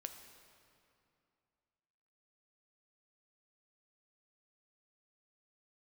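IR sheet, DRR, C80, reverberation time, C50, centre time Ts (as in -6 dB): 6.0 dB, 8.5 dB, 2.6 s, 7.5 dB, 34 ms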